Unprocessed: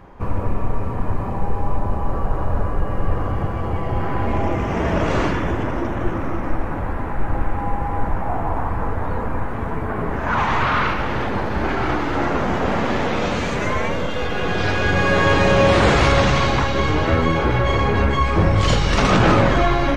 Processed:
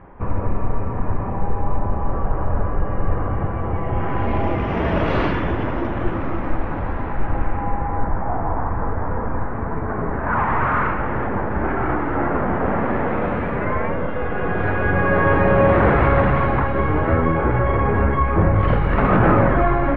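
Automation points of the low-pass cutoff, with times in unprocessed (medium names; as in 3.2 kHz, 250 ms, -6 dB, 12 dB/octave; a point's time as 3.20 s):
low-pass 24 dB/octave
3.79 s 2.3 kHz
4.36 s 4 kHz
7.06 s 4 kHz
8.07 s 1.9 kHz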